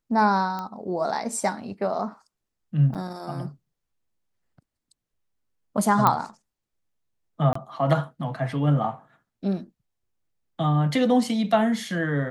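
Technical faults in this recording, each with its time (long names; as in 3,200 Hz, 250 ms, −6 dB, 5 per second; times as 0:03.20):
0:00.59: click −19 dBFS
0:02.94–0:02.95: drop-out 7.3 ms
0:06.07: click −6 dBFS
0:07.53–0:07.55: drop-out 24 ms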